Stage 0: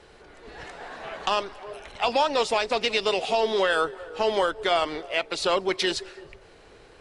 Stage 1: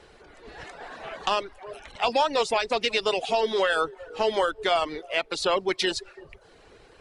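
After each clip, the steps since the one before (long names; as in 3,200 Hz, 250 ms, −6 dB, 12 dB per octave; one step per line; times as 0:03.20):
reverb reduction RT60 0.61 s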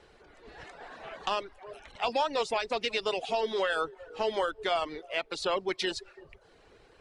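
high-shelf EQ 9,200 Hz −6 dB
level −5.5 dB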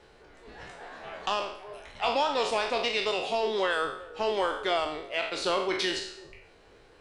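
peak hold with a decay on every bin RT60 0.65 s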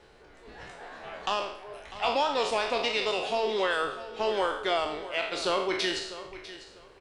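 repeating echo 648 ms, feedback 21%, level −15 dB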